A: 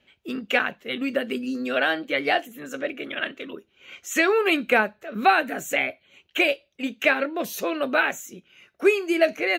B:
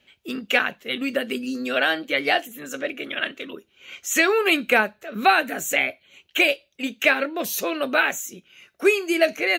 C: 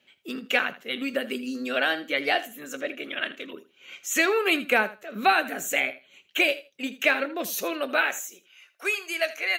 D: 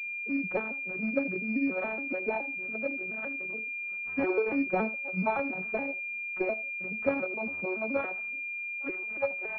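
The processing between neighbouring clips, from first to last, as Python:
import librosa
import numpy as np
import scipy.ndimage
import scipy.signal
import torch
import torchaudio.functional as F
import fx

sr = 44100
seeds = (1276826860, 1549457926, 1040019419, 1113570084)

y1 = fx.high_shelf(x, sr, hz=3100.0, db=8.0)
y2 = fx.filter_sweep_highpass(y1, sr, from_hz=150.0, to_hz=800.0, start_s=7.55, end_s=8.57, q=0.7)
y2 = fx.echo_feedback(y2, sr, ms=80, feedback_pct=16, wet_db=-16.0)
y2 = y2 * 10.0 ** (-3.5 / 20.0)
y3 = fx.vocoder_arp(y2, sr, chord='minor triad', root=54, every_ms=141)
y3 = fx.hpss(y3, sr, part='harmonic', gain_db=-5)
y3 = fx.pwm(y3, sr, carrier_hz=2400.0)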